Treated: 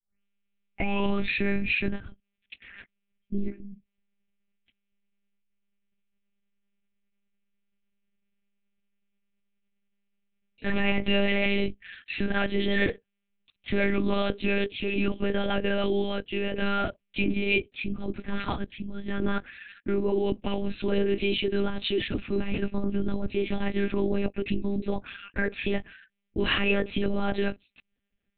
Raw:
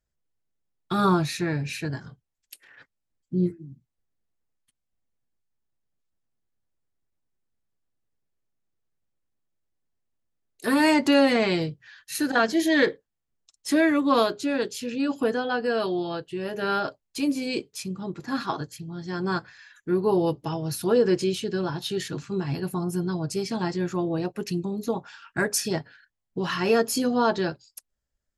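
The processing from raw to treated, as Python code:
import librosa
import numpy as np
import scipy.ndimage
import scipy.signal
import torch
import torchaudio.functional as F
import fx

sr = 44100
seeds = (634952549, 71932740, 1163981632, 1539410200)

p1 = fx.tape_start_head(x, sr, length_s=1.34)
p2 = fx.over_compress(p1, sr, threshold_db=-26.0, ratio=-0.5)
p3 = p1 + (p2 * librosa.db_to_amplitude(0.0))
p4 = fx.lpc_monotone(p3, sr, seeds[0], pitch_hz=200.0, order=8)
p5 = fx.graphic_eq_15(p4, sr, hz=(250, 1000, 2500), db=(6, -6, 11))
y = p5 * librosa.db_to_amplitude(-6.5)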